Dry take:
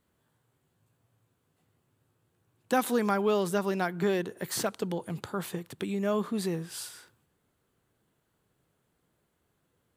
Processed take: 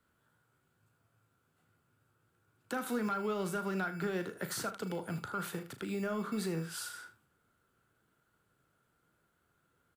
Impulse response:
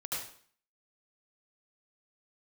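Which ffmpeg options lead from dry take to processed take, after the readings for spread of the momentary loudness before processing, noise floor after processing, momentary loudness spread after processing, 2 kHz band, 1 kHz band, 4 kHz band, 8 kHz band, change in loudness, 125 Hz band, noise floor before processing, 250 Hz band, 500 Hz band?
10 LU, -77 dBFS, 7 LU, -3.0 dB, -6.5 dB, -6.0 dB, -5.5 dB, -6.5 dB, -4.5 dB, -76 dBFS, -6.0 dB, -8.5 dB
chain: -filter_complex "[0:a]acrossover=split=240|2600[a][b][c];[a]acrusher=samples=18:mix=1:aa=0.000001[d];[d][b][c]amix=inputs=3:normalize=0,acrossover=split=290[e][f];[f]acompressor=threshold=-32dB:ratio=3[g];[e][g]amix=inputs=2:normalize=0,equalizer=f=1.4k:w=5:g=14,asoftclip=type=tanh:threshold=-17.5dB,alimiter=level_in=0.5dB:limit=-24dB:level=0:latency=1:release=105,volume=-0.5dB,asplit=2[h][i];[i]aecho=0:1:37|78:0.282|0.188[j];[h][j]amix=inputs=2:normalize=0,volume=-3dB"

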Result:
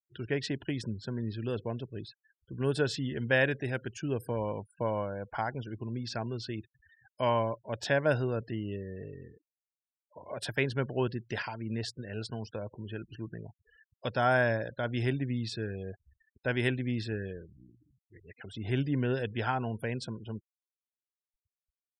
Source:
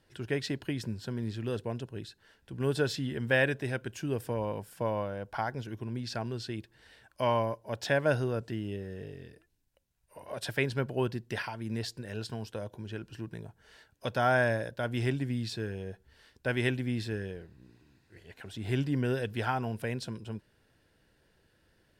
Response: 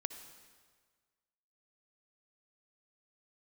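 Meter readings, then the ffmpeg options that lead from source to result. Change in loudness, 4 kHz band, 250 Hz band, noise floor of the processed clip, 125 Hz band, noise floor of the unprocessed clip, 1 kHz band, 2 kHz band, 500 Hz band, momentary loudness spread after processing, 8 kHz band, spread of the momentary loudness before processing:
0.0 dB, -0.5 dB, 0.0 dB, under -85 dBFS, 0.0 dB, -69 dBFS, 0.0 dB, 0.0 dB, 0.0 dB, 14 LU, -2.0 dB, 14 LU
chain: -af "afftfilt=real='re*gte(hypot(re,im),0.00501)':imag='im*gte(hypot(re,im),0.00501)':win_size=1024:overlap=0.75"

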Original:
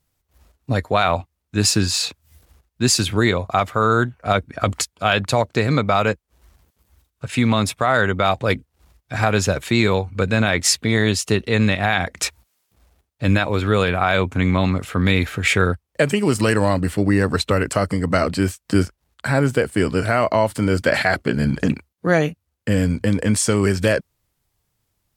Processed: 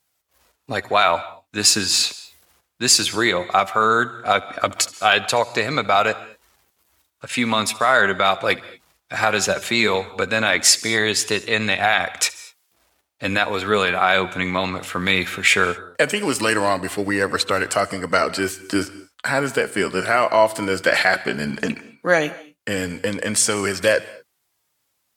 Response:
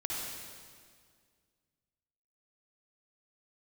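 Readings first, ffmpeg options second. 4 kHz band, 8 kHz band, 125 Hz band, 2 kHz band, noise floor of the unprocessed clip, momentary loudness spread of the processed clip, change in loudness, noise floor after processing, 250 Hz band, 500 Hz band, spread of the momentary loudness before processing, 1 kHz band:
+3.5 dB, +3.5 dB, -12.5 dB, +3.0 dB, -75 dBFS, 9 LU, 0.0 dB, -72 dBFS, -6.0 dB, -1.0 dB, 6 LU, +2.0 dB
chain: -filter_complex "[0:a]highpass=f=720:p=1,flanger=delay=1.2:depth=5.2:regen=71:speed=0.17:shape=triangular,asplit=2[a][b];[1:a]atrim=start_sample=2205,afade=t=out:st=0.22:d=0.01,atrim=end_sample=10143,adelay=73[c];[b][c]afir=irnorm=-1:irlink=0,volume=-19dB[d];[a][d]amix=inputs=2:normalize=0,volume=8dB"

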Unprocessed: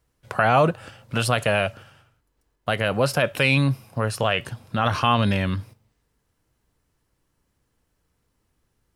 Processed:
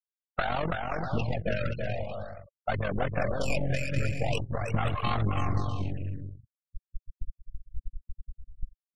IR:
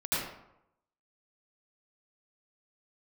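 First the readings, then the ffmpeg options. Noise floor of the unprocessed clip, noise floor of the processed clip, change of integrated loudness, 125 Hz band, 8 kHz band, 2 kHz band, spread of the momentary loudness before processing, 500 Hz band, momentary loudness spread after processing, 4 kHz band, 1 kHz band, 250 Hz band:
-73 dBFS, under -85 dBFS, -9.0 dB, -5.0 dB, -12.0 dB, -10.0 dB, 11 LU, -8.0 dB, 19 LU, -12.5 dB, -9.0 dB, -8.0 dB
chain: -af "aeval=exprs='val(0)+0.5*0.119*sgn(val(0))':c=same,agate=range=-33dB:threshold=-17dB:ratio=3:detection=peak,dynaudnorm=f=110:g=5:m=10dB,afftfilt=real='re*gte(hypot(re,im),0.501)':imag='im*gte(hypot(re,im),0.501)':win_size=1024:overlap=0.75,asubboost=boost=6.5:cutoff=65,aeval=exprs='(tanh(10*val(0)+0.55)-tanh(0.55))/10':c=same,tremolo=f=46:d=0.71,highshelf=f=8.4k:g=6,acompressor=threshold=-34dB:ratio=8,afftfilt=real='re*gte(hypot(re,im),0.00447)':imag='im*gte(hypot(re,im),0.00447)':win_size=1024:overlap=0.75,aecho=1:1:330|528|646.8|718.1|760.8:0.631|0.398|0.251|0.158|0.1,afftfilt=real='re*(1-between(b*sr/1024,890*pow(6400/890,0.5+0.5*sin(2*PI*0.44*pts/sr))/1.41,890*pow(6400/890,0.5+0.5*sin(2*PI*0.44*pts/sr))*1.41))':imag='im*(1-between(b*sr/1024,890*pow(6400/890,0.5+0.5*sin(2*PI*0.44*pts/sr))/1.41,890*pow(6400/890,0.5+0.5*sin(2*PI*0.44*pts/sr))*1.41))':win_size=1024:overlap=0.75,volume=7.5dB"

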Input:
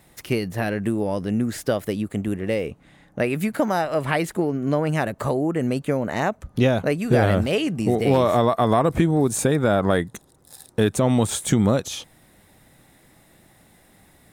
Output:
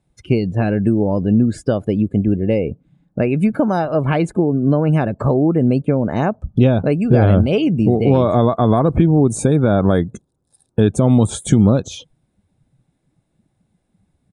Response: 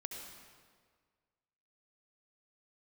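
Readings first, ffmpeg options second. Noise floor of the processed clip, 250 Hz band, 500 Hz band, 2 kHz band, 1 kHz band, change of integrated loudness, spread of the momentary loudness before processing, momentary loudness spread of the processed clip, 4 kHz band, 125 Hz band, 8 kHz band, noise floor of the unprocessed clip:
-69 dBFS, +7.5 dB, +4.0 dB, -2.0 dB, +1.5 dB, +6.0 dB, 8 LU, 6 LU, -2.0 dB, +8.5 dB, -1.5 dB, -56 dBFS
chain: -filter_complex "[0:a]bandreject=f=1.9k:w=7.2,afftdn=nr=21:nf=-38,lowshelf=f=470:g=10.5,asplit=2[a][b];[b]alimiter=limit=-7dB:level=0:latency=1:release=310,volume=2.5dB[c];[a][c]amix=inputs=2:normalize=0,aresample=22050,aresample=44100,volume=-6.5dB"

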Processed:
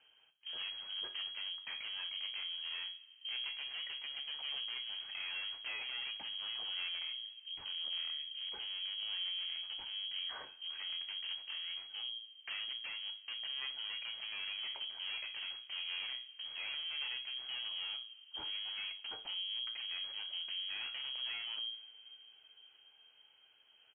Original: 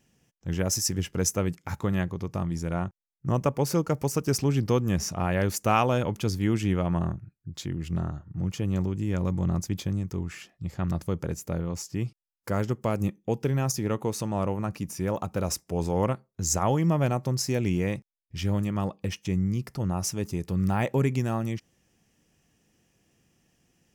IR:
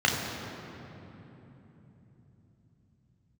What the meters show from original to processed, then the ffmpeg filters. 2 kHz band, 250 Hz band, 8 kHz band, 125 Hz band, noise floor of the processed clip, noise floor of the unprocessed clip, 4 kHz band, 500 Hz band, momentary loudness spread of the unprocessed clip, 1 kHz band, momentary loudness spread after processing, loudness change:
-5.0 dB, under -40 dB, under -40 dB, under -40 dB, -65 dBFS, -79 dBFS, +6.0 dB, -35.5 dB, 8 LU, -24.0 dB, 6 LU, -11.5 dB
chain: -filter_complex "[0:a]equalizer=f=940:w=0.89:g=8,bandreject=f=57.02:t=h:w=4,bandreject=f=114.04:t=h:w=4,acompressor=threshold=-29dB:ratio=6,flanger=delay=7.1:depth=9.4:regen=62:speed=0.16:shape=sinusoidal,aeval=exprs='(tanh(178*val(0)+0.45)-tanh(0.45))/178':c=same,aphaser=in_gain=1:out_gain=1:delay=2.9:decay=0.21:speed=0.88:type=sinusoidal,aecho=1:1:34|61:0.178|0.133,asplit=2[a][b];[1:a]atrim=start_sample=2205,adelay=51[c];[b][c]afir=irnorm=-1:irlink=0,volume=-32.5dB[d];[a][d]amix=inputs=2:normalize=0,lowpass=f=2.8k:t=q:w=0.5098,lowpass=f=2.8k:t=q:w=0.6013,lowpass=f=2.8k:t=q:w=0.9,lowpass=f=2.8k:t=q:w=2.563,afreqshift=-3300,volume=3dB"

